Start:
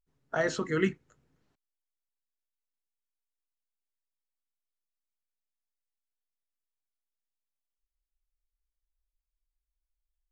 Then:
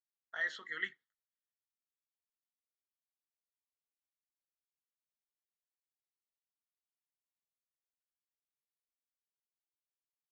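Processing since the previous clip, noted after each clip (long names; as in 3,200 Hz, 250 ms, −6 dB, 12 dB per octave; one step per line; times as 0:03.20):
pair of resonant band-passes 2,500 Hz, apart 0.79 octaves
noise gate with hold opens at −60 dBFS
level +1 dB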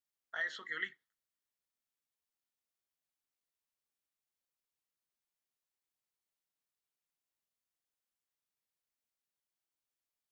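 downward compressor, threshold −35 dBFS, peak gain reduction 5 dB
level +2 dB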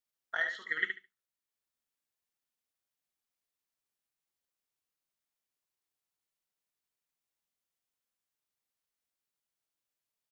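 transient designer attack +8 dB, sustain −3 dB
repeating echo 71 ms, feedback 18%, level −6.5 dB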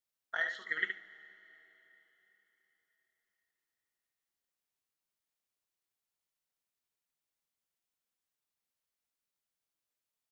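convolution reverb RT60 4.0 s, pre-delay 40 ms, DRR 17 dB
level −1.5 dB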